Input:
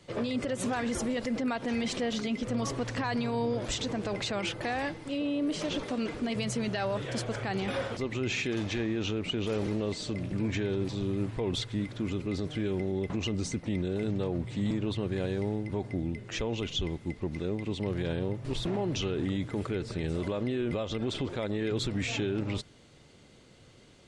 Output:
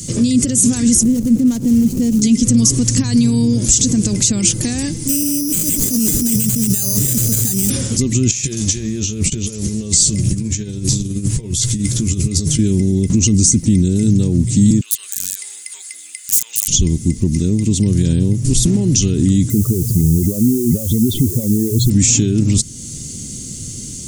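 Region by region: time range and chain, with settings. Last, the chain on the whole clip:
1.03–2.22 median filter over 25 samples + high shelf 2700 Hz -8.5 dB
5.08–7.7 negative-ratio compressor -35 dBFS + careless resampling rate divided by 8×, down none, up hold
8.31–12.59 bell 250 Hz -11 dB 0.67 oct + negative-ratio compressor -38 dBFS, ratio -0.5 + doubler 14 ms -7 dB
14.81–16.68 HPF 1300 Hz 24 dB/oct + bell 5700 Hz -11 dB 0.26 oct + wrapped overs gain 36 dB
19.5–21.9 spectral contrast raised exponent 2.2 + requantised 10-bit, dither triangular
whole clip: compressor 1.5:1, threshold -49 dBFS; EQ curve 240 Hz 0 dB, 700 Hz -26 dB, 1500 Hz -22 dB, 3900 Hz -8 dB, 6600 Hz +14 dB; maximiser +28.5 dB; gain -1 dB

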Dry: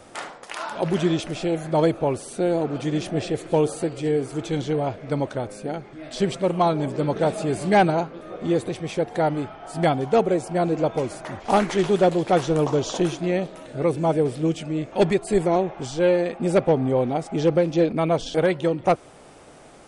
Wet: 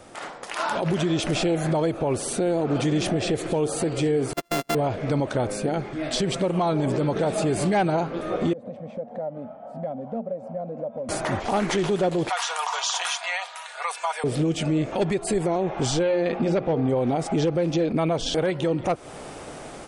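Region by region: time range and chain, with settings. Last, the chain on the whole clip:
4.33–4.75 sample sorter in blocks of 64 samples + gate -25 dBFS, range -39 dB + bell 110 Hz -12 dB 1.3 oct
8.53–11.09 double band-pass 360 Hz, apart 1.3 oct + compressor 2.5:1, threshold -41 dBFS
12.29–14.24 steep high-pass 850 Hz + comb 4.2 ms, depth 44% + compressor 4:1, threshold -30 dBFS
16.03–16.89 LPF 5700 Hz 24 dB/oct + notches 60/120/180/240/300/360/420/480 Hz
whole clip: compressor, threshold -25 dBFS; limiter -24.5 dBFS; AGC gain up to 9 dB

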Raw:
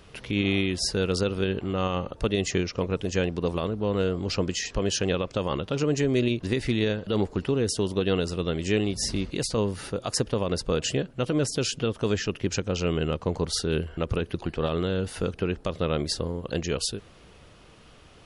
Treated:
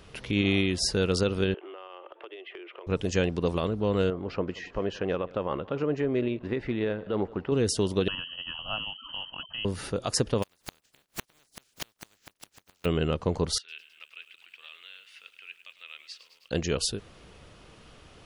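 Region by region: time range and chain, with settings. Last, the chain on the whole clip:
1.54–2.87 Chebyshev band-pass 340–3300 Hz, order 5 + bell 480 Hz -6.5 dB 0.3 oct + compressor 8:1, threshold -40 dBFS
4.1–7.52 LPF 1700 Hz + low shelf 220 Hz -10 dB + echo 0.178 s -21.5 dB
8.08–9.65 inverted band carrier 3100 Hz + fixed phaser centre 950 Hz, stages 4
10.42–12.84 spectral contrast lowered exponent 0.19 + flipped gate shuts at -18 dBFS, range -40 dB
13.58–16.51 ladder band-pass 2800 Hz, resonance 55% + lo-fi delay 0.105 s, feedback 80%, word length 10-bit, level -13 dB
whole clip: dry

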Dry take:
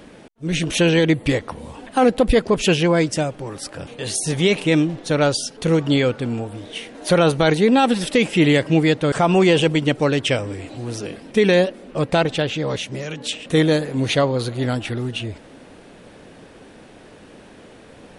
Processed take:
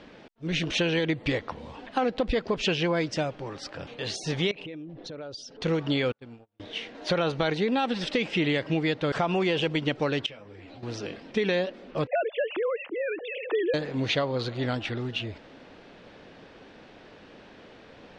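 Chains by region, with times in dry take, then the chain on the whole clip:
4.51–5.61 formant sharpening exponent 1.5 + compressor 8:1, threshold -31 dBFS
6.12–6.6 gate -24 dBFS, range -40 dB + compressor 1.5:1, threshold -57 dBFS
10.26–10.83 high shelf 7700 Hz -11 dB + compressor 12:1, threshold -32 dBFS + ensemble effect
12.07–13.74 sine-wave speech + air absorption 330 m + three-band squash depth 70%
whole clip: LPF 5200 Hz 24 dB/oct; low shelf 480 Hz -5 dB; compressor, threshold -19 dBFS; gain -3 dB

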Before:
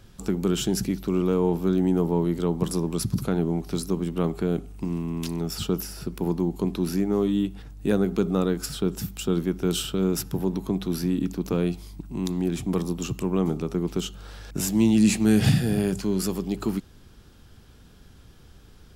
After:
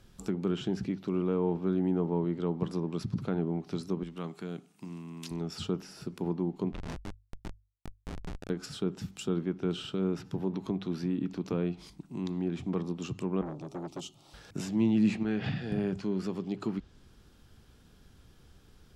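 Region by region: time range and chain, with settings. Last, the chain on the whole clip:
4.03–5.31 HPF 170 Hz + bell 410 Hz -8.5 dB 2.3 oct
6.72–8.5 negative-ratio compressor -30 dBFS + Schmitt trigger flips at -24 dBFS
10.54–11.9 upward compressor, threshold -30 dBFS + mismatched tape noise reduction encoder only
13.41–14.34 fixed phaser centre 310 Hz, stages 8 + core saturation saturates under 730 Hz
15.23–15.72 LPF 4500 Hz + low shelf 350 Hz -9 dB
whole clip: treble ducked by the level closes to 2700 Hz, closed at -21 dBFS; notches 50/100 Hz; gain -6.5 dB

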